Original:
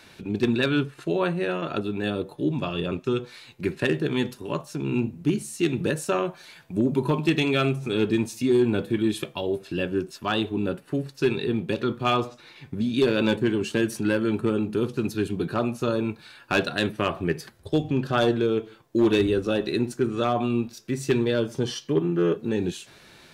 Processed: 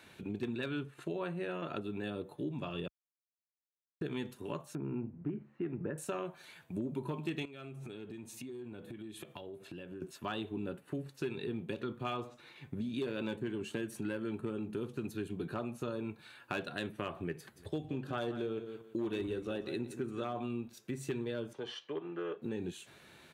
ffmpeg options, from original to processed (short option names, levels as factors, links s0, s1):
-filter_complex "[0:a]asettb=1/sr,asplit=3[s0][s1][s2];[s0]atrim=end=4.754[s3];[s1]atrim=start=4.75:end=5.98,asetpts=PTS-STARTPTS,afade=t=in:d=0.004:c=qsin,afade=t=out:st=1.226:d=0.004:c=qsin,lowpass=f=1800:w=0.5412,lowpass=f=1800:w=1.3066[s4];[s2]atrim=start=5.976[s5];[s3][s4]acrossfade=d=0.004:c1=hsin:c2=qsin[s6];[s6][s5]acrossfade=d=0.004:c1=qsin:c2=hsin,asettb=1/sr,asplit=3[s7][s8][s9];[s7]atrim=end=7.454[s10];[s8]atrim=start=7.45:end=10.02,asetpts=PTS-STARTPTS,afade=t=in:d=0.004:c=qsin,afade=t=out:st=2.566:d=0.004:c=qsin,acompressor=threshold=0.0178:ratio=16:attack=3.2:release=140:knee=1:detection=peak[s11];[s9]atrim=start=10.016[s12];[s10][s11]acrossfade=d=0.004:c1=hsin:c2=qsin[s13];[s13][s12]acrossfade=d=0.004:c1=qsin:c2=hsin,asplit=3[s14][s15][s16];[s14]afade=t=out:st=17.55:d=0.02[s17];[s15]aecho=1:1:174|348:0.224|0.0403,afade=t=in:st=17.55:d=0.02,afade=t=out:st=20.38:d=0.02[s18];[s16]afade=t=in:st=20.38:d=0.02[s19];[s17][s18][s19]amix=inputs=3:normalize=0,asettb=1/sr,asplit=3[s20][s21][s22];[s20]atrim=end=21.534[s23];[s21]atrim=start=21.53:end=22.42,asetpts=PTS-STARTPTS,afade=t=in:d=0.004:c=qsin,afade=t=out:st=0.886:d=0.004:c=qsin,acrossover=split=420 4500:gain=0.126 1 0.126[s24][s25][s26];[s24][s25][s26]amix=inputs=3:normalize=0[s27];[s22]atrim=start=22.416[s28];[s23][s27]acrossfade=d=0.004:c1=hsin:c2=qsin[s29];[s29][s28]acrossfade=d=0.004:c1=qsin:c2=hsin,asplit=3[s30][s31][s32];[s30]atrim=end=2.88,asetpts=PTS-STARTPTS,afade=t=out:st=2.876:d=0.004:c=hsin[s33];[s31]atrim=start=2.88:end=4.01,asetpts=PTS-STARTPTS,volume=0[s34];[s32]atrim=start=4.01,asetpts=PTS-STARTPTS,afade=t=in:d=0.004:c=hsin[s35];[s33][s34][s35]concat=n=3:v=0:a=1,highpass=58,equalizer=f=5100:t=o:w=0.52:g=-8,acompressor=threshold=0.0316:ratio=3,volume=0.473"